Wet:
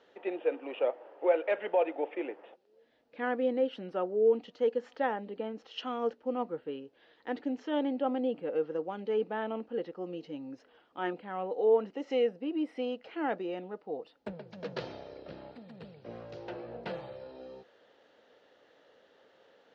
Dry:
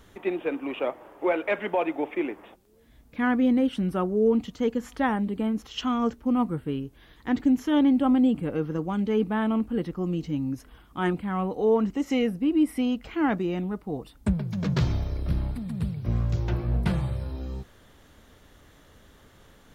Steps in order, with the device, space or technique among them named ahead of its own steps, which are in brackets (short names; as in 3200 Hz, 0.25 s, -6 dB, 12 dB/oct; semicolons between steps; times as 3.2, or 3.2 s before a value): phone earpiece (speaker cabinet 490–4200 Hz, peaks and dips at 500 Hz +8 dB, 1100 Hz -9 dB, 1500 Hz -3 dB, 2200 Hz -7 dB, 3500 Hz -6 dB); gain -2.5 dB